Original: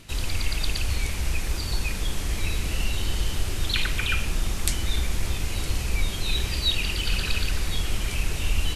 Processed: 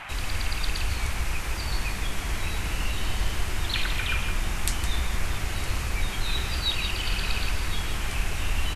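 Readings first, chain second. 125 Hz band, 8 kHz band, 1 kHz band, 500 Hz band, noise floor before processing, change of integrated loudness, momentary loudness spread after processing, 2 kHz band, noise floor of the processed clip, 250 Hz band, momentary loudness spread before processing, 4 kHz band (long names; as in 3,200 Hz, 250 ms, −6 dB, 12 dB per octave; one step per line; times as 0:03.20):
−2.0 dB, −2.5 dB, +4.0 dB, −1.0 dB, −30 dBFS, −1.5 dB, 4 LU, +0.5 dB, −32 dBFS, −2.0 dB, 5 LU, −2.0 dB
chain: noise in a band 640–2,700 Hz −37 dBFS
slap from a distant wall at 28 metres, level −7 dB
level −3 dB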